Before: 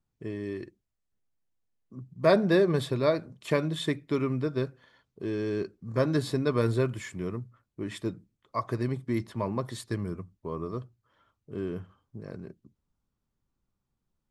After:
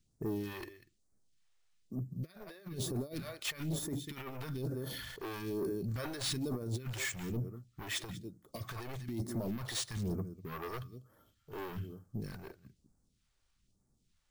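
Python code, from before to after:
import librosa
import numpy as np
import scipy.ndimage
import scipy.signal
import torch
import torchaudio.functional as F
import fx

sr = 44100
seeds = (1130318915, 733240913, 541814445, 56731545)

y = fx.high_shelf(x, sr, hz=2300.0, db=7.0)
y = fx.notch(y, sr, hz=1000.0, q=7.4)
y = y + 10.0 ** (-19.5 / 20.0) * np.pad(y, (int(195 * sr / 1000.0), 0))[:len(y)]
y = fx.over_compress(y, sr, threshold_db=-31.0, ratio=-0.5)
y = fx.peak_eq(y, sr, hz=280.0, db=2.5, octaves=1.5)
y = np.repeat(y[::3], 3)[:len(y)]
y = 10.0 ** (-32.0 / 20.0) * np.tanh(y / 10.0 ** (-32.0 / 20.0))
y = fx.phaser_stages(y, sr, stages=2, low_hz=180.0, high_hz=2800.0, hz=1.1, feedback_pct=30)
y = fx.sustainer(y, sr, db_per_s=26.0, at=(4.34, 6.53))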